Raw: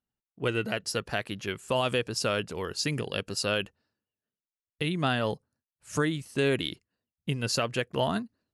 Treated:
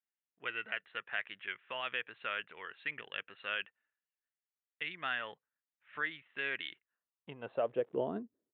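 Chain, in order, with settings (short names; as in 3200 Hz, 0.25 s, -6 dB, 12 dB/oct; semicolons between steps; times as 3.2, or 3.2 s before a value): 7.45–8.02 crackle 220/s -36 dBFS; downsampling 8000 Hz; band-pass sweep 1900 Hz -> 390 Hz, 6.73–7.96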